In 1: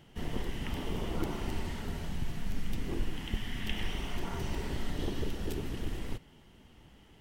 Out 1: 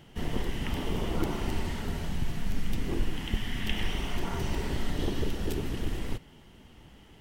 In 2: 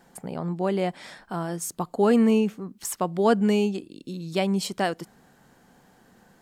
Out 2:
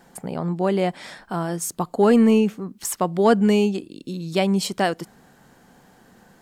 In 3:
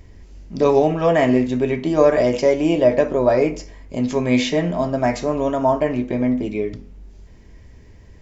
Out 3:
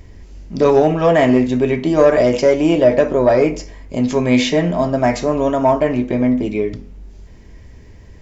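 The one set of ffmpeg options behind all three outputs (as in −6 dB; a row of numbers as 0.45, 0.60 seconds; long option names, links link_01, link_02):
-af "acontrast=31,volume=-1dB"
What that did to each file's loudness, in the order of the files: +4.0, +4.0, +3.5 LU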